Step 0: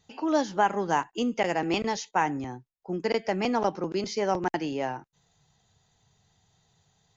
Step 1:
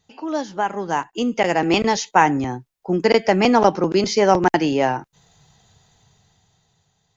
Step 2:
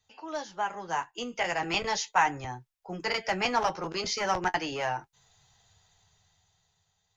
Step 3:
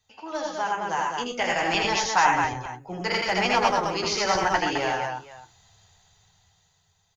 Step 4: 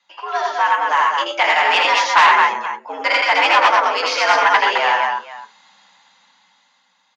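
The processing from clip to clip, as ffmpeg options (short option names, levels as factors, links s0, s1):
-af "dynaudnorm=f=300:g=9:m=6.68"
-filter_complex "[0:a]equalizer=f=250:t=o:w=1.8:g=-13.5,flanger=delay=9.1:depth=3.1:regen=-40:speed=0.39:shape=sinusoidal,acrossover=split=250|610[s0][s1][s2];[s1]aeval=exprs='0.0251*(abs(mod(val(0)/0.0251+3,4)-2)-1)':c=same[s3];[s0][s3][s2]amix=inputs=3:normalize=0,volume=0.794"
-af "aecho=1:1:80|90|114|212|476:0.668|0.473|0.335|0.631|0.133,volume=1.33"
-af "afreqshift=97,aeval=exprs='0.473*(cos(1*acos(clip(val(0)/0.473,-1,1)))-cos(1*PI/2))+0.188*(cos(4*acos(clip(val(0)/0.473,-1,1)))-cos(4*PI/2))+0.188*(cos(5*acos(clip(val(0)/0.473,-1,1)))-cos(5*PI/2))':c=same,highpass=750,lowpass=3200,volume=1.5"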